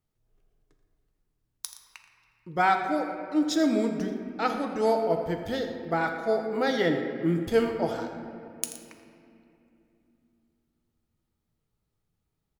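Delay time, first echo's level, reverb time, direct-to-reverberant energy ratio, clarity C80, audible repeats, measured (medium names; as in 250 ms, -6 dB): 83 ms, -13.5 dB, 2.8 s, 3.5 dB, 6.0 dB, 2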